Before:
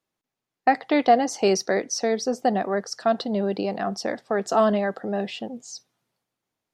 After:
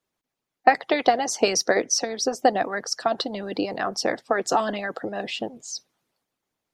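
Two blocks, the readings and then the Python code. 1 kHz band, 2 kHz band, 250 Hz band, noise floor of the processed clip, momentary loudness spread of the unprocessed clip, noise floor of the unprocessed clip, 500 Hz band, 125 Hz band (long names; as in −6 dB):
+0.5 dB, +3.5 dB, −4.5 dB, −85 dBFS, 11 LU, below −85 dBFS, −1.5 dB, can't be measured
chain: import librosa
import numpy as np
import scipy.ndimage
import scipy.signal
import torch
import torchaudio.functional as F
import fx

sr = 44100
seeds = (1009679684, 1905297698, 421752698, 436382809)

y = fx.hpss(x, sr, part='harmonic', gain_db=-15)
y = y * 10.0 ** (6.0 / 20.0)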